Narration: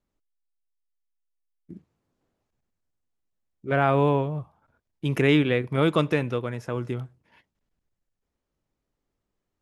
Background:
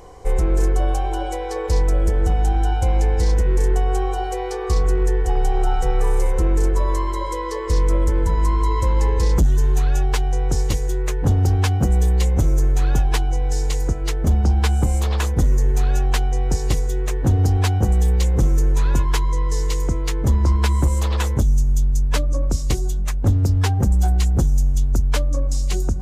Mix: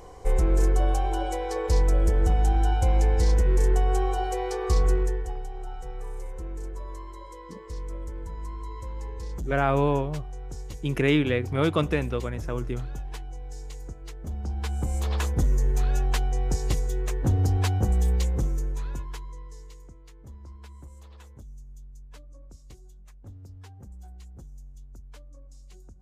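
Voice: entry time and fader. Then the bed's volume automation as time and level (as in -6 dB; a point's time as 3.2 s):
5.80 s, -2.0 dB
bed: 4.92 s -3.5 dB
5.48 s -18 dB
14.24 s -18 dB
15.14 s -6 dB
18.15 s -6 dB
19.96 s -28 dB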